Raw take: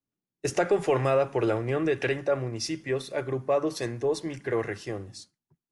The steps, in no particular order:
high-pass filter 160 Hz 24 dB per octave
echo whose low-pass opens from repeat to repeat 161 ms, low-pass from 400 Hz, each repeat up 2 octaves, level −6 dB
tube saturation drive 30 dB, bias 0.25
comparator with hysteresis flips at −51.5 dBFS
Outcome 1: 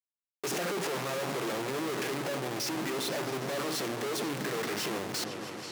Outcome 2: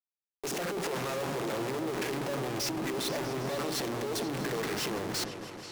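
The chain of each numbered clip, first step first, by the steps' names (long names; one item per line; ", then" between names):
comparator with hysteresis, then echo whose low-pass opens from repeat to repeat, then tube saturation, then high-pass filter
comparator with hysteresis, then high-pass filter, then tube saturation, then echo whose low-pass opens from repeat to repeat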